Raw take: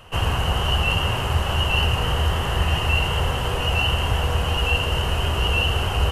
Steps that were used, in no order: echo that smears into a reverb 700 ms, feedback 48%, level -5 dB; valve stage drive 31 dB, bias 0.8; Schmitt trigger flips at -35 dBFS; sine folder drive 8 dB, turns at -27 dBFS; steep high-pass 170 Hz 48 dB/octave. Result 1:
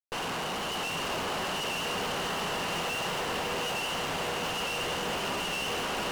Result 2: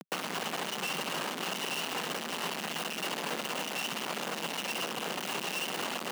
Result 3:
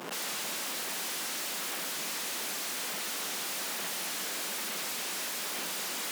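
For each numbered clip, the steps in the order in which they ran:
steep high-pass > Schmitt trigger > sine folder > valve stage > echo that smears into a reverb; echo that smears into a reverb > Schmitt trigger > valve stage > sine folder > steep high-pass; echo that smears into a reverb > sine folder > Schmitt trigger > valve stage > steep high-pass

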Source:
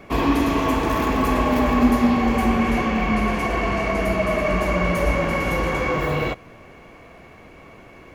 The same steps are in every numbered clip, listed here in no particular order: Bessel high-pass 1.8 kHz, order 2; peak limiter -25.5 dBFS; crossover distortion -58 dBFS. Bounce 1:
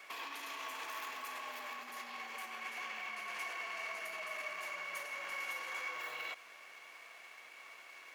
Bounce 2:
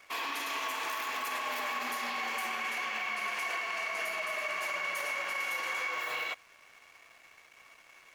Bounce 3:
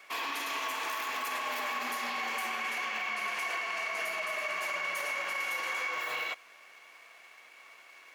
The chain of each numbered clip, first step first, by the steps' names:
peak limiter > crossover distortion > Bessel high-pass; Bessel high-pass > peak limiter > crossover distortion; crossover distortion > Bessel high-pass > peak limiter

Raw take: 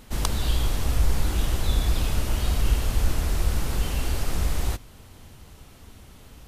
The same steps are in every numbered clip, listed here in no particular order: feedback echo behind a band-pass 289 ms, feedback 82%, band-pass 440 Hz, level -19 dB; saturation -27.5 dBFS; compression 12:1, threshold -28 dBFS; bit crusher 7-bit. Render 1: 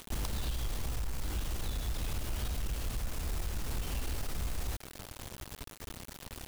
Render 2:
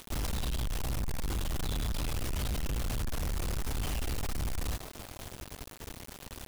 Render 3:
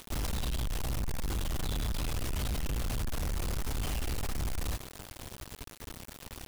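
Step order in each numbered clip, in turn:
compression > feedback echo behind a band-pass > bit crusher > saturation; feedback echo behind a band-pass > saturation > compression > bit crusher; saturation > compression > feedback echo behind a band-pass > bit crusher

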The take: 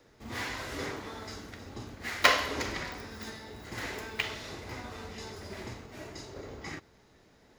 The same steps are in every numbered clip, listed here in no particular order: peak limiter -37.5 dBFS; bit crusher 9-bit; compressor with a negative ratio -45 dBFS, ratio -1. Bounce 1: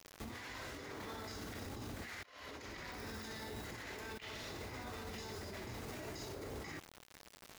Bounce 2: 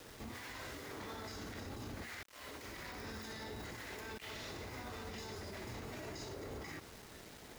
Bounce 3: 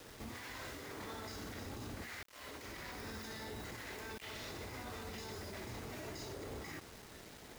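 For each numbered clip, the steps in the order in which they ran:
bit crusher > compressor with a negative ratio > peak limiter; compressor with a negative ratio > bit crusher > peak limiter; compressor with a negative ratio > peak limiter > bit crusher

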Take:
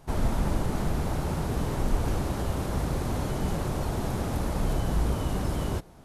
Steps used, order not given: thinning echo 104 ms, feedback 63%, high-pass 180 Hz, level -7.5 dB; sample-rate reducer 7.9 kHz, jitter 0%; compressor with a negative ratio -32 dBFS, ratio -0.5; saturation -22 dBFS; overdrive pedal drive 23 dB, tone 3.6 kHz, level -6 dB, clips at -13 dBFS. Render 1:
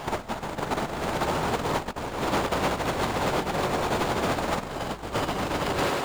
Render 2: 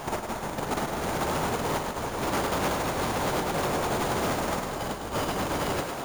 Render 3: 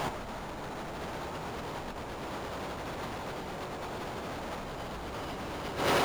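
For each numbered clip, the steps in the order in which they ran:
sample-rate reducer > thinning echo > compressor with a negative ratio > saturation > overdrive pedal; compressor with a negative ratio > overdrive pedal > sample-rate reducer > thinning echo > saturation; thinning echo > sample-rate reducer > overdrive pedal > compressor with a negative ratio > saturation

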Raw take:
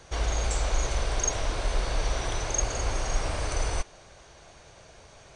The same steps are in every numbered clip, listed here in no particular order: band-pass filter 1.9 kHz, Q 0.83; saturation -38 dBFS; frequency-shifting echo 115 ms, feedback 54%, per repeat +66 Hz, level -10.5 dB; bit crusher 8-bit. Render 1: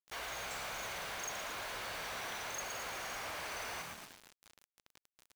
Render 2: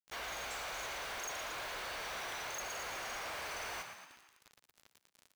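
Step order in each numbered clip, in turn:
frequency-shifting echo > band-pass filter > saturation > bit crusher; band-pass filter > bit crusher > frequency-shifting echo > saturation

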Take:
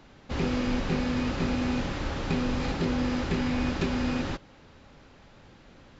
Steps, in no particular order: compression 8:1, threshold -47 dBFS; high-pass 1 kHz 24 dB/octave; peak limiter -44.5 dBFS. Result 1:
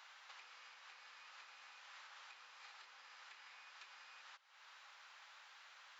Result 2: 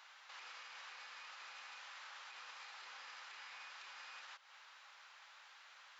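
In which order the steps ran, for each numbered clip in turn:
compression > high-pass > peak limiter; high-pass > compression > peak limiter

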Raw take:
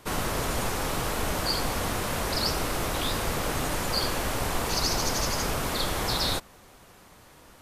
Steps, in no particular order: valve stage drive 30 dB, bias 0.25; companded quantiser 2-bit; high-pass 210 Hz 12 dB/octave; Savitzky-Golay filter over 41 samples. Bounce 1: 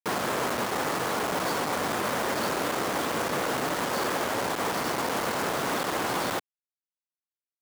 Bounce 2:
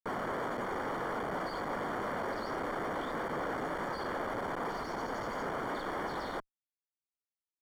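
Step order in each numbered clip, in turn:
Savitzky-Golay filter > valve stage > companded quantiser > high-pass; companded quantiser > high-pass > valve stage > Savitzky-Golay filter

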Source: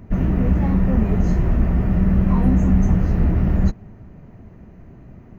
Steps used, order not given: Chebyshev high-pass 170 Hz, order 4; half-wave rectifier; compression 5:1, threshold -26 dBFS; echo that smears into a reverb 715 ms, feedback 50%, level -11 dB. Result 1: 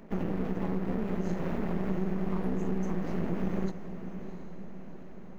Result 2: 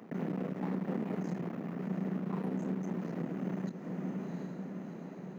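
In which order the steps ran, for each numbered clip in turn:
Chebyshev high-pass > half-wave rectifier > compression > echo that smears into a reverb; half-wave rectifier > echo that smears into a reverb > compression > Chebyshev high-pass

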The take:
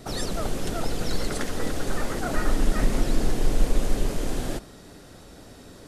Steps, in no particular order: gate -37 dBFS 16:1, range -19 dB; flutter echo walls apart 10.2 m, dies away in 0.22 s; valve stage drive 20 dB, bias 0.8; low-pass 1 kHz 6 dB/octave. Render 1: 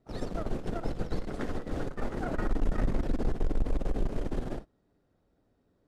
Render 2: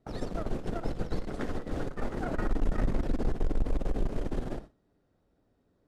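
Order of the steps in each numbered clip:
valve stage > flutter echo > gate > low-pass; gate > low-pass > valve stage > flutter echo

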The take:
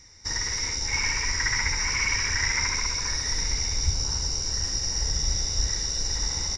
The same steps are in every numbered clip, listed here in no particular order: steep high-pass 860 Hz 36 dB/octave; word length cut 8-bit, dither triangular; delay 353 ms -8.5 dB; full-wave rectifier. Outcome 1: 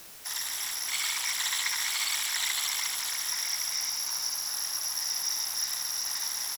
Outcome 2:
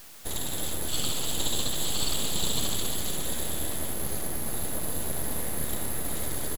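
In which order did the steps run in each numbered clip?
delay > full-wave rectifier > steep high-pass > word length cut; steep high-pass > word length cut > full-wave rectifier > delay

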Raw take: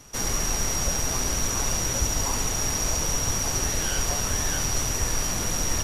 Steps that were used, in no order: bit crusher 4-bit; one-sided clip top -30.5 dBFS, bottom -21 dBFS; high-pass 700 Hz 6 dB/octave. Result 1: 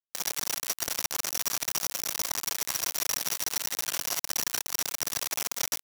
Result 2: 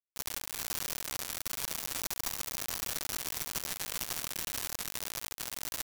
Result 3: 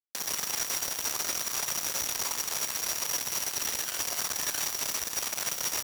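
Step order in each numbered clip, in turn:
one-sided clip > bit crusher > high-pass; one-sided clip > high-pass > bit crusher; bit crusher > one-sided clip > high-pass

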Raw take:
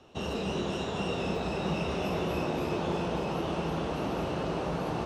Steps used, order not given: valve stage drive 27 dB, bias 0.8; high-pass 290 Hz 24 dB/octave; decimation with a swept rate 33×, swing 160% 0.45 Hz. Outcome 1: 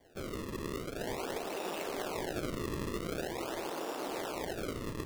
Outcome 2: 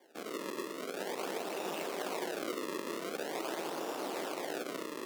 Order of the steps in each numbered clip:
valve stage > high-pass > decimation with a swept rate; decimation with a swept rate > valve stage > high-pass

